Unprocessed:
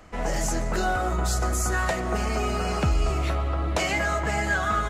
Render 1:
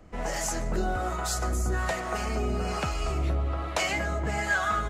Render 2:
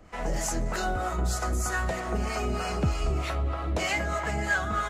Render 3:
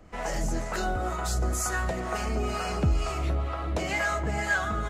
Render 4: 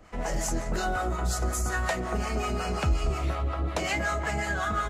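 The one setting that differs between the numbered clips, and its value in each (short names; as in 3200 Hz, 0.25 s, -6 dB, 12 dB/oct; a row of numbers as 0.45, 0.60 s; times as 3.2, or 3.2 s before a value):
harmonic tremolo, rate: 1.2, 3.2, 2.1, 5.5 Hz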